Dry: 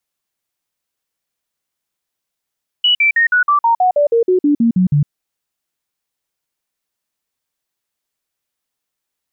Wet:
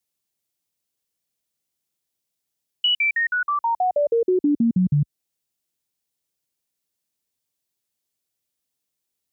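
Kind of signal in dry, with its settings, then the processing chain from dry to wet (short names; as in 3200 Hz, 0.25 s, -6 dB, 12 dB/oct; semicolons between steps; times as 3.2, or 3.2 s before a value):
stepped sine 2940 Hz down, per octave 3, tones 14, 0.11 s, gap 0.05 s -9 dBFS
HPF 57 Hz; bell 1300 Hz -9.5 dB 2.2 oct; compressor 3:1, threshold -18 dBFS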